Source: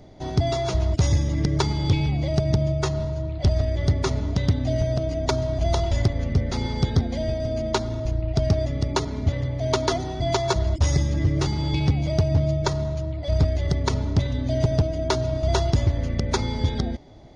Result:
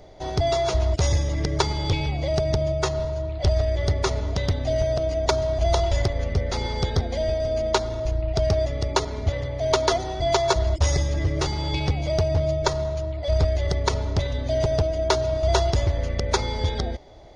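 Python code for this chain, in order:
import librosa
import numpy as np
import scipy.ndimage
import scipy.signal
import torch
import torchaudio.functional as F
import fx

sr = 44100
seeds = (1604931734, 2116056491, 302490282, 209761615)

y = fx.graphic_eq(x, sr, hz=(125, 250, 500), db=(-7, -10, 4))
y = y * 10.0 ** (2.5 / 20.0)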